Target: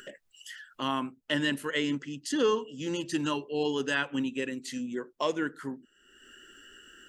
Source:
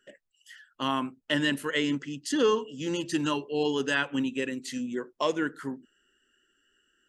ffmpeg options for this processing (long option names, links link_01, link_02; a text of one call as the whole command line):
ffmpeg -i in.wav -af "acompressor=mode=upward:threshold=-34dB:ratio=2.5,volume=-2dB" out.wav